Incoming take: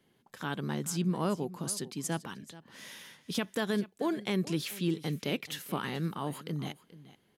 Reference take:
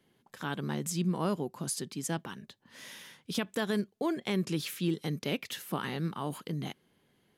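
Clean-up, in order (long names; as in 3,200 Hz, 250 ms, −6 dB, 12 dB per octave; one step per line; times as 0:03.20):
echo removal 431 ms −17.5 dB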